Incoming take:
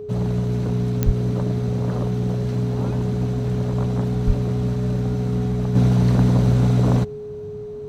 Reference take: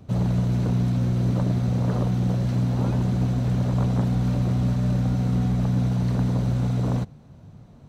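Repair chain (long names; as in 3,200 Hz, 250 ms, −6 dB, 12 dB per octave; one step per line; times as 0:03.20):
click removal
notch filter 420 Hz, Q 30
0:01.05–0:01.17: high-pass filter 140 Hz 24 dB per octave
0:04.26–0:04.38: high-pass filter 140 Hz 24 dB per octave
level 0 dB, from 0:05.75 −6.5 dB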